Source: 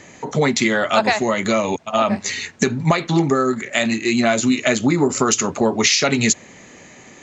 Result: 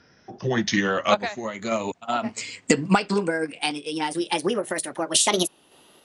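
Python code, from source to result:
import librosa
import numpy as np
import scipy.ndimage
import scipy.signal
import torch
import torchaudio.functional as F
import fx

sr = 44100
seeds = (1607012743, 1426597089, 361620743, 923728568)

y = fx.speed_glide(x, sr, from_pct=79, to_pct=160)
y = fx.tremolo_random(y, sr, seeds[0], hz=3.5, depth_pct=55)
y = fx.upward_expand(y, sr, threshold_db=-31.0, expansion=1.5)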